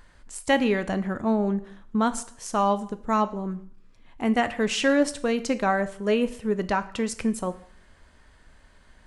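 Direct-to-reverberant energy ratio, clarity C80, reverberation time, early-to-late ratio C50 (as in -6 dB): 11.5 dB, 19.0 dB, 0.60 s, 16.5 dB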